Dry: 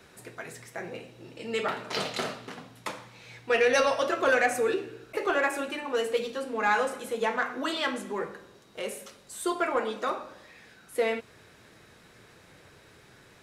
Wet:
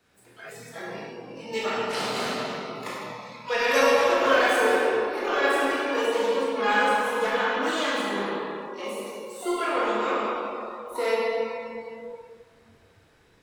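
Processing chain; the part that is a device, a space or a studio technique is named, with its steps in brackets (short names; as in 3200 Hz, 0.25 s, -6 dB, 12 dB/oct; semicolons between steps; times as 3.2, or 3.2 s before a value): shimmer-style reverb (harmoniser +12 st -9 dB; reverb RT60 3.4 s, pre-delay 19 ms, DRR -6.5 dB); spectral noise reduction 10 dB; 8.81–10.24 high shelf 6200 Hz -5 dB; gain -4 dB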